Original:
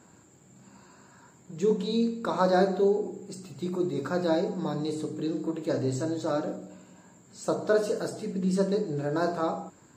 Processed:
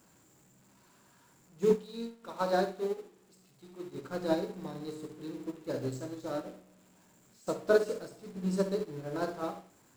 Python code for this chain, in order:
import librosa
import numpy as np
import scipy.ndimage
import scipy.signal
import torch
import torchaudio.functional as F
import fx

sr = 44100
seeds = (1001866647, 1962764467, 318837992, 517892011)

y = x + 0.5 * 10.0 ** (-34.0 / 20.0) * np.sign(x)
y = fx.low_shelf(y, sr, hz=500.0, db=-5.5, at=(1.75, 3.95))
y = fx.echo_thinned(y, sr, ms=65, feedback_pct=37, hz=320.0, wet_db=-8.5)
y = fx.upward_expand(y, sr, threshold_db=-35.0, expansion=2.5)